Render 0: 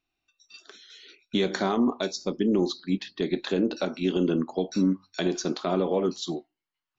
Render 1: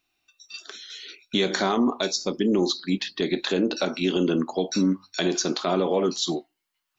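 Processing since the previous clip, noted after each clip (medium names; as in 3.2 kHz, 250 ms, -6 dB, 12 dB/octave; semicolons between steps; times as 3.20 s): tilt EQ +1.5 dB/octave; in parallel at +1 dB: peak limiter -23.5 dBFS, peak gain reduction 11 dB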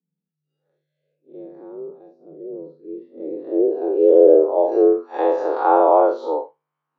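spectral blur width 114 ms; frequency shift +150 Hz; low-pass sweep 150 Hz -> 970 Hz, 2.66–5.05 s; trim +7 dB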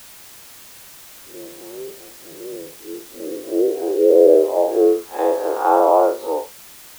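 added noise white -42 dBFS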